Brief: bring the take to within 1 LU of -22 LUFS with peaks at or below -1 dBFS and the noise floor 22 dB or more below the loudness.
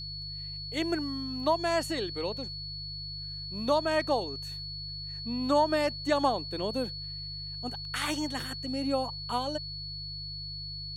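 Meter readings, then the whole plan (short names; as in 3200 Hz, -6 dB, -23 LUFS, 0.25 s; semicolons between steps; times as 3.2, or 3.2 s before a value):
hum 50 Hz; harmonics up to 150 Hz; hum level -42 dBFS; steady tone 4400 Hz; tone level -38 dBFS; loudness -31.5 LUFS; peak -12.5 dBFS; loudness target -22.0 LUFS
-> de-hum 50 Hz, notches 3; notch 4400 Hz, Q 30; gain +9.5 dB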